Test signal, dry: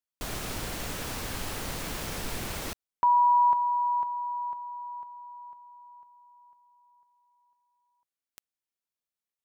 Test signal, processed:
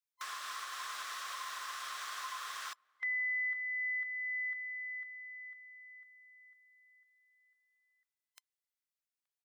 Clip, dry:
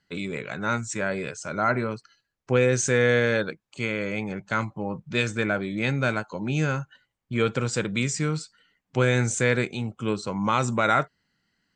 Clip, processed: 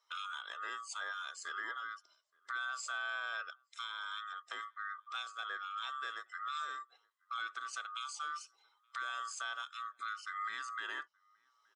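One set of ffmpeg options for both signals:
ffmpeg -i in.wav -filter_complex "[0:a]afftfilt=real='real(if(lt(b,960),b+48*(1-2*mod(floor(b/48),2)),b),0)':imag='imag(if(lt(b,960),b+48*(1-2*mod(floor(b/48),2)),b),0)':win_size=2048:overlap=0.75,acrossover=split=8500[link_01][link_02];[link_02]acompressor=threshold=-53dB:ratio=4:attack=1:release=60[link_03];[link_01][link_03]amix=inputs=2:normalize=0,highpass=1100,acompressor=threshold=-31dB:ratio=5:attack=0.52:release=670:knee=1:detection=rms,asplit=2[link_04][link_05];[link_05]adelay=874.6,volume=-29dB,highshelf=frequency=4000:gain=-19.7[link_06];[link_04][link_06]amix=inputs=2:normalize=0,volume=-3dB" out.wav

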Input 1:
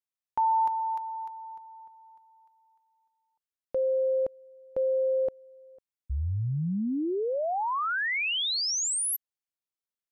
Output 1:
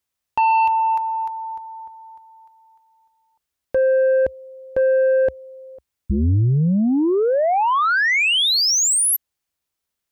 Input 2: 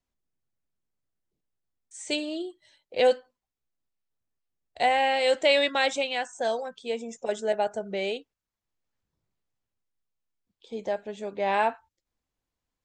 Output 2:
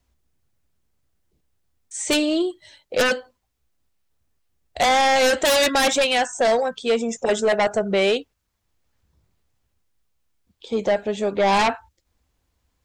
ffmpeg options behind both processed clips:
ffmpeg -i in.wav -filter_complex "[0:a]equalizer=frequency=66:width=1.5:gain=11.5,asplit=2[link_01][link_02];[link_02]aeval=exprs='0.335*sin(PI/2*5.01*val(0)/0.335)':channel_layout=same,volume=-4dB[link_03];[link_01][link_03]amix=inputs=2:normalize=0,volume=-3dB" out.wav

